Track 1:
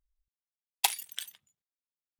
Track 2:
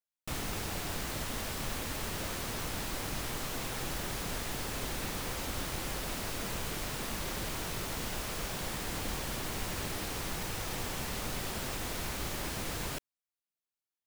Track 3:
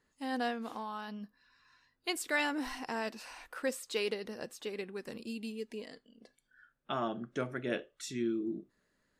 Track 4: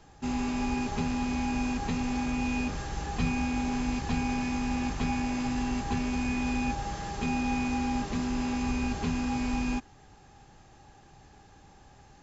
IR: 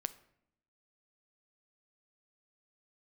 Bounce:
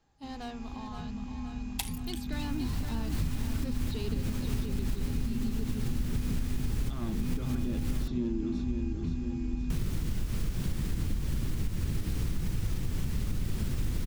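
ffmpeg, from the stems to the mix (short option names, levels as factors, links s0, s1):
-filter_complex "[0:a]adelay=950,volume=0.398[s0];[1:a]alimiter=level_in=1.88:limit=0.0631:level=0:latency=1:release=213,volume=0.531,adelay=2050,volume=1.12,asplit=3[s1][s2][s3];[s1]atrim=end=8.08,asetpts=PTS-STARTPTS,afade=t=out:st=8.076:d=0.004:c=hsin[s4];[s2]atrim=start=8.08:end=9.7,asetpts=PTS-STARTPTS,volume=0[s5];[s3]atrim=start=9.7,asetpts=PTS-STARTPTS,afade=t=in:d=0.004:c=hsin[s6];[s4][s5][s6]concat=n=3:v=0:a=1[s7];[2:a]equalizer=f=250:t=o:w=1:g=4,equalizer=f=1000:t=o:w=1:g=6,equalizer=f=2000:t=o:w=1:g=-7,equalizer=f=4000:t=o:w=1:g=12,equalizer=f=8000:t=o:w=1:g=-11,volume=23.7,asoftclip=hard,volume=0.0422,volume=0.376,asplit=3[s8][s9][s10];[s9]volume=0.447[s11];[3:a]volume=0.141[s12];[s10]apad=whole_len=710521[s13];[s7][s13]sidechaincompress=threshold=0.00398:ratio=8:attack=6.9:release=144[s14];[s11]aecho=0:1:521|1042|1563|2084|2605|3126|3647|4168|4689:1|0.59|0.348|0.205|0.121|0.0715|0.0422|0.0249|0.0147[s15];[s0][s14][s8][s12][s15]amix=inputs=5:normalize=0,asubboost=boost=10.5:cutoff=210,acompressor=threshold=0.0501:ratio=6"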